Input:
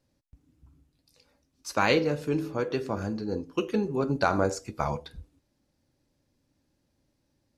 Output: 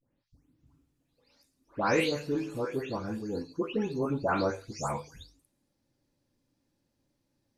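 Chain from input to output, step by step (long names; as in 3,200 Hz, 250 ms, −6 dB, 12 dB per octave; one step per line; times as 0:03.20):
every frequency bin delayed by itself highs late, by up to 334 ms
mains-hum notches 50/100/150 Hz
level −2.5 dB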